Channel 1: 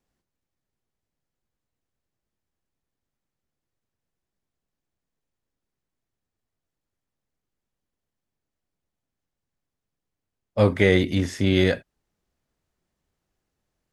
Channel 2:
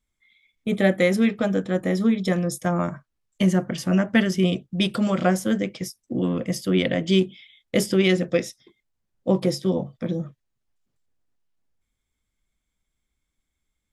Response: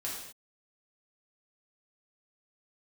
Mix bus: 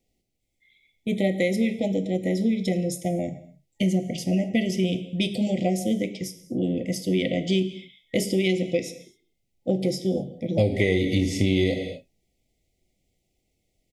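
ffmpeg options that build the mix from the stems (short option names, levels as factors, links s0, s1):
-filter_complex "[0:a]volume=1.26,asplit=2[s0][s1];[s1]volume=0.596[s2];[1:a]adelay=400,volume=0.708,asplit=2[s3][s4];[s4]volume=0.335[s5];[2:a]atrim=start_sample=2205[s6];[s2][s5]amix=inputs=2:normalize=0[s7];[s7][s6]afir=irnorm=-1:irlink=0[s8];[s0][s3][s8]amix=inputs=3:normalize=0,afftfilt=real='re*(1-between(b*sr/4096,840,1900))':imag='im*(1-between(b*sr/4096,840,1900))':win_size=4096:overlap=0.75,equalizer=f=880:t=o:w=0.43:g=-6.5,acompressor=threshold=0.126:ratio=6"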